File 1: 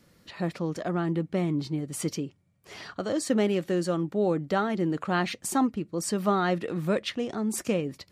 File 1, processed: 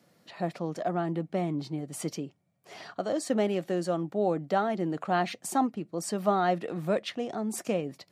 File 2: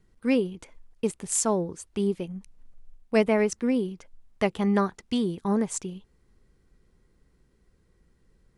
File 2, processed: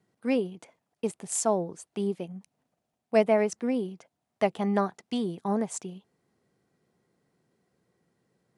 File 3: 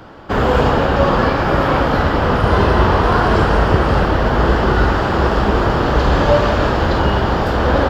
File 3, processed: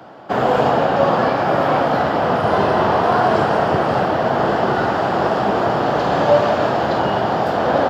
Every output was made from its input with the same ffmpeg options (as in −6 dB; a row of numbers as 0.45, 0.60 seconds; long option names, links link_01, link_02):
-af "highpass=frequency=120:width=0.5412,highpass=frequency=120:width=1.3066,equalizer=frequency=700:width=2.7:gain=9.5,volume=-4dB"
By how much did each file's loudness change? −2.0, −2.0, −2.0 LU